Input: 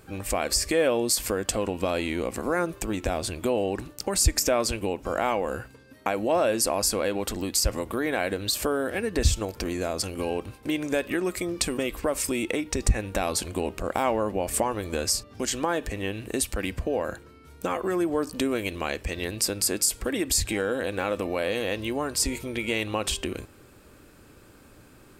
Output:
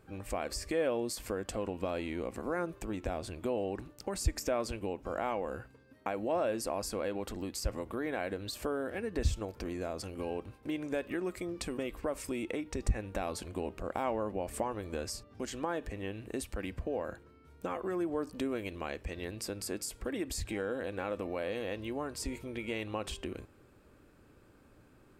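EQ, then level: high shelf 3000 Hz -9.5 dB; -8.0 dB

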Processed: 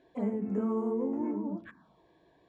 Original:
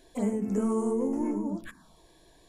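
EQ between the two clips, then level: BPF 100–2100 Hz; -3.0 dB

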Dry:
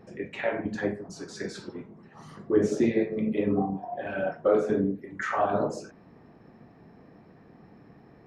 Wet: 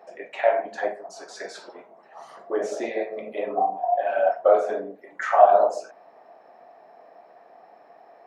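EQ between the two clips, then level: resonant high-pass 670 Hz, resonance Q 4.8; +1.0 dB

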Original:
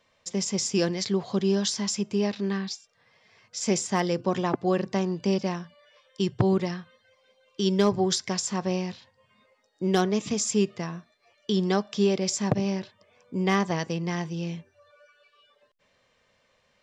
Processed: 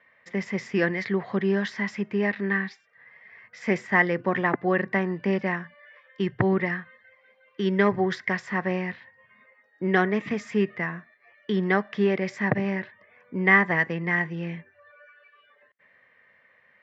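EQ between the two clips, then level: HPF 110 Hz; synth low-pass 1900 Hz, resonance Q 7; 0.0 dB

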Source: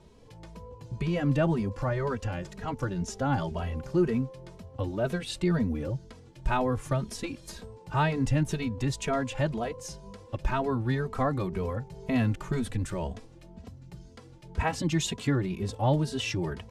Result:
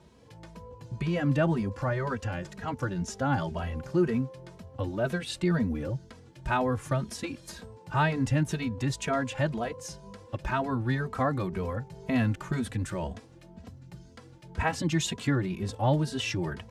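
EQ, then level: HPF 64 Hz; bell 1600 Hz +3.5 dB 0.54 oct; notch 420 Hz, Q 12; 0.0 dB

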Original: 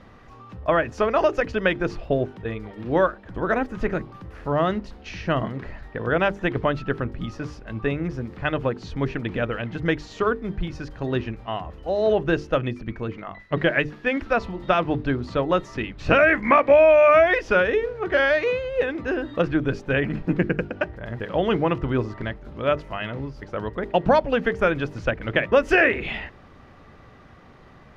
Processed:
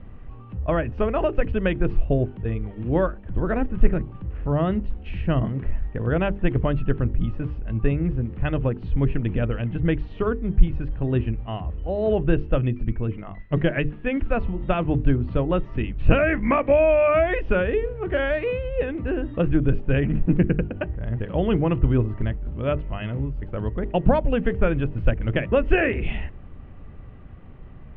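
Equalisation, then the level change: synth low-pass 2900 Hz, resonance Q 3; tilt -4.5 dB/oct; -7.0 dB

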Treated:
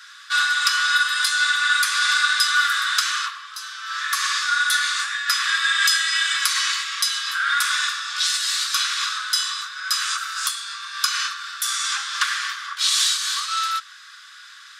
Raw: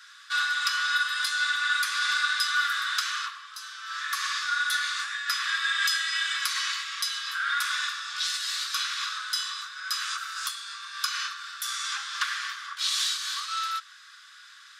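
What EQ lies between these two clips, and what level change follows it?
dynamic EQ 8500 Hz, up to +5 dB, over -44 dBFS, Q 1.3; +6.5 dB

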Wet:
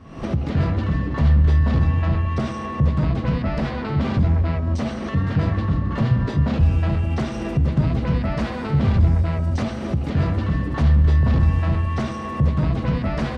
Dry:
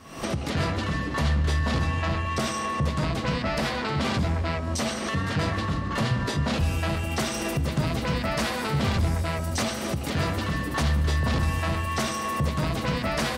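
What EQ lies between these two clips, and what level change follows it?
tape spacing loss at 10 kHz 21 dB; low shelf 260 Hz +10 dB; 0.0 dB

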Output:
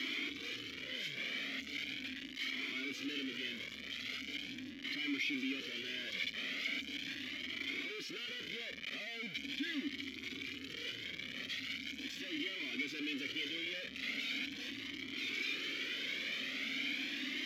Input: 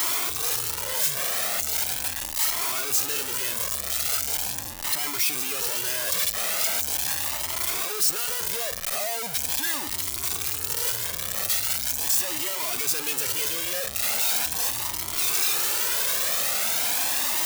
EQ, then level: running mean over 5 samples; vowel filter i; +6.5 dB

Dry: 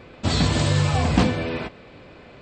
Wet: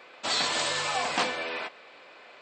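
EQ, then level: HPF 740 Hz 12 dB/oct; 0.0 dB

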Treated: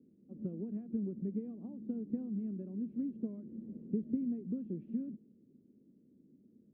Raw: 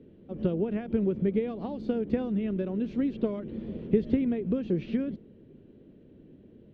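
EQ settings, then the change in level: band-pass 230 Hz, Q 2.4; air absorption 110 m; -7.0 dB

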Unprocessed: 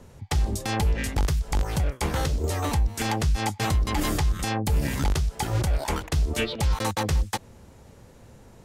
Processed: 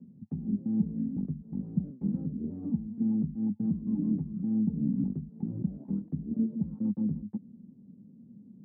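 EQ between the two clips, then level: Butterworth band-pass 210 Hz, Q 2.6; air absorption 400 m; +7.5 dB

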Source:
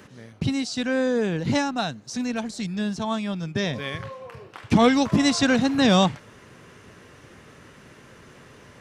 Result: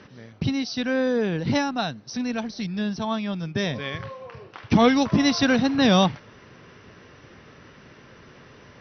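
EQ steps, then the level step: brick-wall FIR low-pass 6100 Hz; 0.0 dB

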